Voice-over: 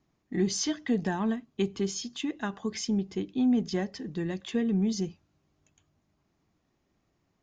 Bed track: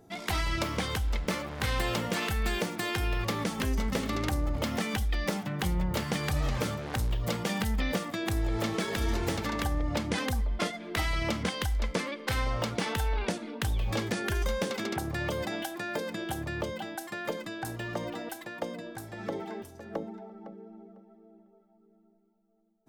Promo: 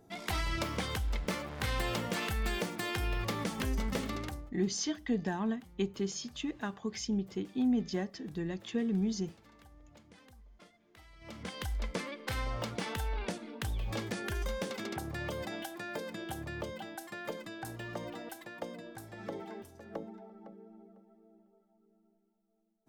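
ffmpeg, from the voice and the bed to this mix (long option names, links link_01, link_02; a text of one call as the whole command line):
ffmpeg -i stem1.wav -i stem2.wav -filter_complex "[0:a]adelay=4200,volume=-4.5dB[link_01];[1:a]volume=18dB,afade=type=out:start_time=4.01:duration=0.51:silence=0.0630957,afade=type=in:start_time=11.19:duration=0.53:silence=0.0794328[link_02];[link_01][link_02]amix=inputs=2:normalize=0" out.wav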